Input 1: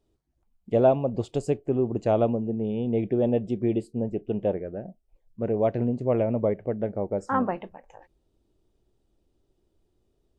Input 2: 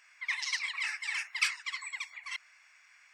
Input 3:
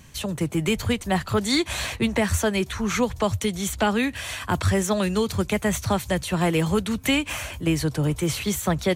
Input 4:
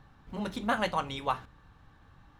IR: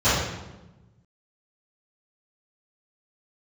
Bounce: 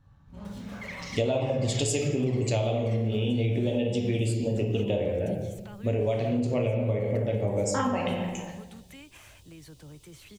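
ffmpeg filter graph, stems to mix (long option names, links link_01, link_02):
-filter_complex "[0:a]aexciter=amount=5.9:drive=8.6:freq=2200,adelay=450,volume=2dB,asplit=2[link_01][link_02];[link_02]volume=-20dB[link_03];[1:a]acompressor=threshold=-42dB:ratio=6,adelay=600,volume=2dB,asplit=2[link_04][link_05];[link_05]volume=-20.5dB[link_06];[2:a]alimiter=limit=-20dB:level=0:latency=1:release=117,adelay=1850,volume=-20dB[link_07];[3:a]acompressor=threshold=-32dB:ratio=3,bass=frequency=250:gain=6,treble=frequency=4000:gain=8,aeval=exprs='0.0335*(abs(mod(val(0)/0.0335+3,4)-2)-1)':channel_layout=same,volume=-14.5dB,asplit=2[link_08][link_09];[link_09]volume=-15dB[link_10];[4:a]atrim=start_sample=2205[link_11];[link_03][link_06][link_10]amix=inputs=3:normalize=0[link_12];[link_12][link_11]afir=irnorm=-1:irlink=0[link_13];[link_01][link_04][link_07][link_08][link_13]amix=inputs=5:normalize=0,acompressor=threshold=-23dB:ratio=10"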